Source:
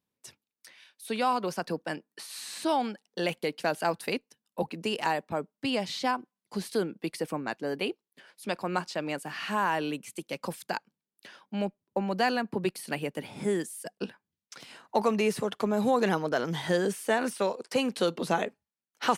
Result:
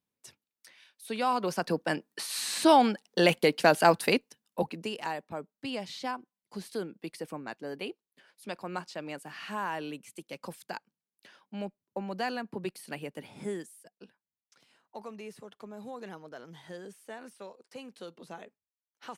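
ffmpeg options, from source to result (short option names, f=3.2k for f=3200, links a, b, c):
-af "volume=7dB,afade=t=in:st=1.16:d=1.23:silence=0.316228,afade=t=out:st=3.93:d=0.74:silence=0.446684,afade=t=out:st=4.67:d=0.27:silence=0.473151,afade=t=out:st=13.46:d=0.43:silence=0.281838"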